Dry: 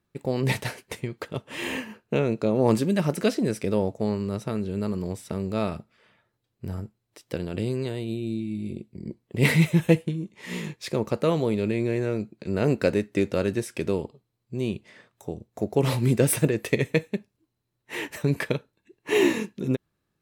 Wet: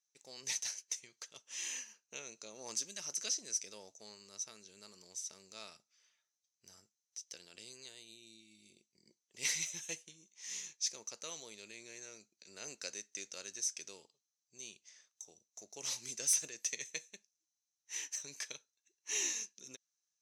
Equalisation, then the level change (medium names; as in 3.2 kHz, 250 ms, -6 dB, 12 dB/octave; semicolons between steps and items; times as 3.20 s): band-pass filter 6.1 kHz, Q 12; +14.5 dB